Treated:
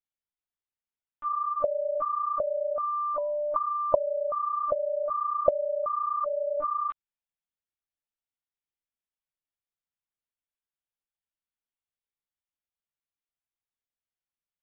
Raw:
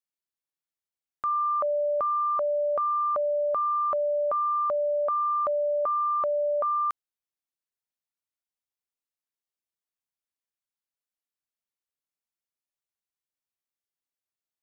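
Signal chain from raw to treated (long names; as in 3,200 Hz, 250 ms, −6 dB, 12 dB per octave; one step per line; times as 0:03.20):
0:02.79–0:03.94: steady tone 980 Hz −48 dBFS
linear-prediction vocoder at 8 kHz pitch kept
level −3.5 dB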